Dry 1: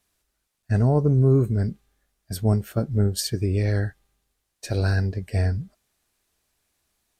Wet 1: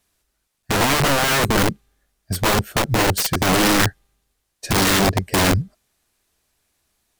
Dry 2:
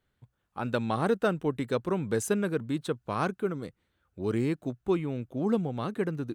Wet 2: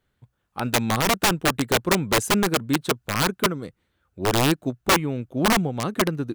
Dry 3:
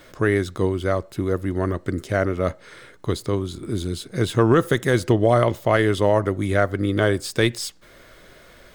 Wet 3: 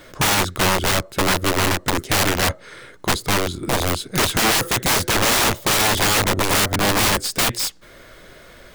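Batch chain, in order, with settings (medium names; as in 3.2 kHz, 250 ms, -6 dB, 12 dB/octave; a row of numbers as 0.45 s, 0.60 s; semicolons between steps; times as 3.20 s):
integer overflow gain 21.5 dB; upward expansion 1.5:1, over -36 dBFS; peak normalisation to -12 dBFS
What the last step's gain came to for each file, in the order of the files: +9.5 dB, +9.5 dB, +9.5 dB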